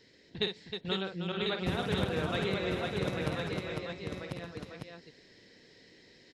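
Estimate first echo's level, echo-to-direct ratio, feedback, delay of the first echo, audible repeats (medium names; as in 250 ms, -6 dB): -7.0 dB, 1.5 dB, no regular repeats, 52 ms, 7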